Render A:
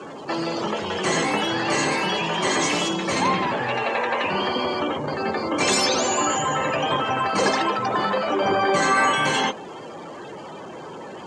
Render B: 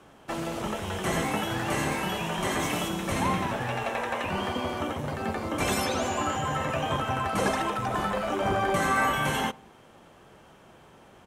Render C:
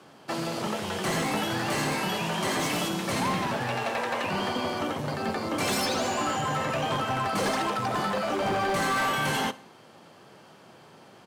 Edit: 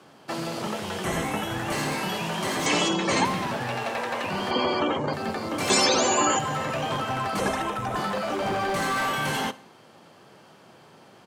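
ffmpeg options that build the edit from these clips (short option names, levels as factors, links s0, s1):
-filter_complex "[1:a]asplit=2[s0][s1];[0:a]asplit=3[s2][s3][s4];[2:a]asplit=6[s5][s6][s7][s8][s9][s10];[s5]atrim=end=1.042[s11];[s0]atrim=start=1.038:end=1.722[s12];[s6]atrim=start=1.718:end=2.662[s13];[s2]atrim=start=2.658:end=3.252[s14];[s7]atrim=start=3.248:end=4.512[s15];[s3]atrim=start=4.508:end=5.132[s16];[s8]atrim=start=5.128:end=5.702[s17];[s4]atrim=start=5.698:end=6.392[s18];[s9]atrim=start=6.388:end=7.402[s19];[s1]atrim=start=7.398:end=7.962[s20];[s10]atrim=start=7.958[s21];[s11][s12]acrossfade=d=0.004:c1=hsin:c2=hsin[s22];[s22][s13]acrossfade=d=0.004:c1=hsin:c2=hsin[s23];[s23][s14]acrossfade=d=0.004:c1=hsin:c2=hsin[s24];[s24][s15]acrossfade=d=0.004:c1=hsin:c2=hsin[s25];[s25][s16]acrossfade=d=0.004:c1=hsin:c2=hsin[s26];[s26][s17]acrossfade=d=0.004:c1=hsin:c2=hsin[s27];[s27][s18]acrossfade=d=0.004:c1=hsin:c2=hsin[s28];[s28][s19]acrossfade=d=0.004:c1=hsin:c2=hsin[s29];[s29][s20]acrossfade=d=0.004:c1=hsin:c2=hsin[s30];[s30][s21]acrossfade=d=0.004:c1=hsin:c2=hsin"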